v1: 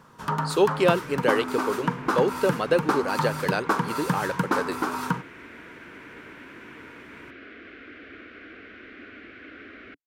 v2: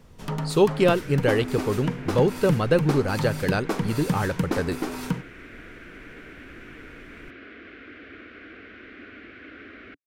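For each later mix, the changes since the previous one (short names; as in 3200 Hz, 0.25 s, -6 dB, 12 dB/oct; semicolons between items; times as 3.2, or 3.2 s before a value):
speech: remove HPF 300 Hz 12 dB/oct; first sound: add band shelf 1200 Hz -11 dB 1.1 oct; master: add low shelf 130 Hz +4.5 dB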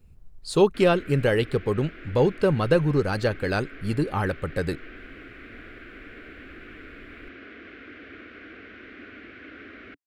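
first sound: muted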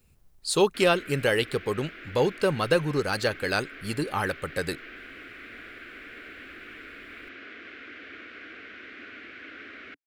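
master: add tilt +2.5 dB/oct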